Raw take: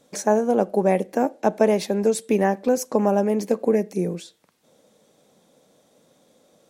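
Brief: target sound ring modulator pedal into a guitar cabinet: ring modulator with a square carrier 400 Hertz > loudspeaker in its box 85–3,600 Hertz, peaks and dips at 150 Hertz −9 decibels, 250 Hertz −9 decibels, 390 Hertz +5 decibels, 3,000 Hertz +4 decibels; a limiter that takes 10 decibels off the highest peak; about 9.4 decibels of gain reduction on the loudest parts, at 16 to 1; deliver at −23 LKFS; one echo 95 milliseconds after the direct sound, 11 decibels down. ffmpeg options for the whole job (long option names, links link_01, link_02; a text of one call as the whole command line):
ffmpeg -i in.wav -af "acompressor=threshold=-23dB:ratio=16,alimiter=limit=-21dB:level=0:latency=1,aecho=1:1:95:0.282,aeval=exprs='val(0)*sgn(sin(2*PI*400*n/s))':channel_layout=same,highpass=85,equalizer=frequency=150:width_type=q:width=4:gain=-9,equalizer=frequency=250:width_type=q:width=4:gain=-9,equalizer=frequency=390:width_type=q:width=4:gain=5,equalizer=frequency=3000:width_type=q:width=4:gain=4,lowpass=frequency=3600:width=0.5412,lowpass=frequency=3600:width=1.3066,volume=9dB" out.wav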